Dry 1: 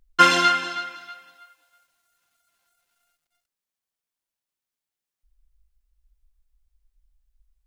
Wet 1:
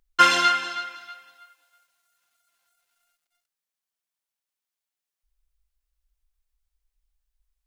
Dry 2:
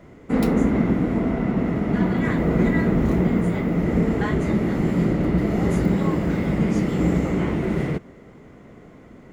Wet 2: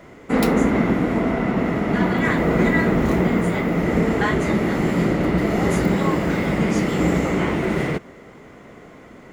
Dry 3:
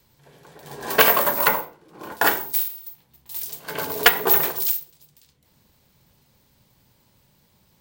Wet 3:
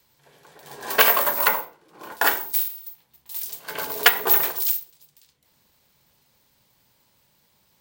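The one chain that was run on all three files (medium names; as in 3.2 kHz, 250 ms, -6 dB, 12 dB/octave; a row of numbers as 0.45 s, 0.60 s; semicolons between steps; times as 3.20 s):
bass shelf 380 Hz -10 dB; normalise loudness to -20 LUFS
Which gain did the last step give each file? -0.5 dB, +8.0 dB, 0.0 dB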